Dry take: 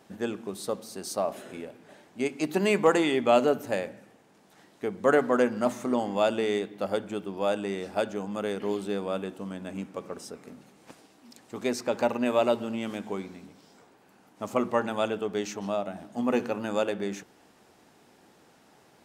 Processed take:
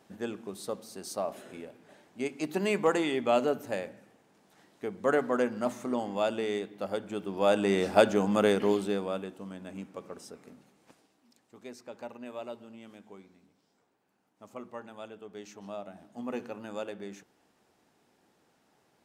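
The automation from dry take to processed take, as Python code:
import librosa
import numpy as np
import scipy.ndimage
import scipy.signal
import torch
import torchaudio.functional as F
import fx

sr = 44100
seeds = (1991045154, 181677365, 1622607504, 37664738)

y = fx.gain(x, sr, db=fx.line((7.0, -4.5), (7.8, 7.0), (8.47, 7.0), (9.31, -5.5), (10.46, -5.5), (11.62, -16.5), (15.15, -16.5), (15.8, -10.0)))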